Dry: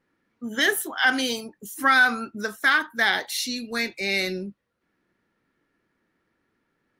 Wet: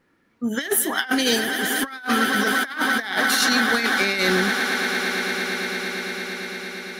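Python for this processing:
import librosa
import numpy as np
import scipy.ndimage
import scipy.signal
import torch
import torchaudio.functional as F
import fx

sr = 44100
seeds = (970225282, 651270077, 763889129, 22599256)

y = fx.echo_swell(x, sr, ms=114, loudest=8, wet_db=-17.0)
y = fx.over_compress(y, sr, threshold_db=-26.0, ratio=-0.5)
y = y * librosa.db_to_amplitude(5.5)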